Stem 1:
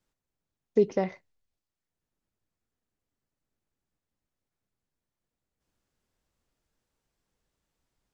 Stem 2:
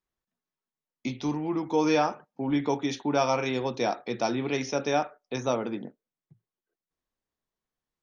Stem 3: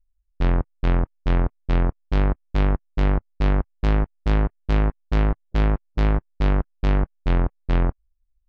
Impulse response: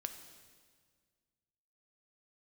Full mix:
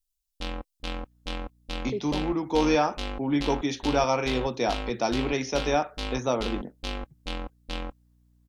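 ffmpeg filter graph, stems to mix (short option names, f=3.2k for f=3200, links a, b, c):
-filter_complex "[0:a]adelay=1150,volume=-10dB[a];[1:a]aeval=exprs='val(0)+0.000794*(sin(2*PI*60*n/s)+sin(2*PI*2*60*n/s)/2+sin(2*PI*3*60*n/s)/3+sin(2*PI*4*60*n/s)/4+sin(2*PI*5*60*n/s)/5)':c=same,adelay=800,volume=1dB[b];[2:a]bass=f=250:g=-10,treble=f=4k:g=-2,aecho=1:1:3.8:0.76,aexciter=amount=3.3:drive=9.9:freq=2.7k,volume=-10dB[c];[a][b][c]amix=inputs=3:normalize=0"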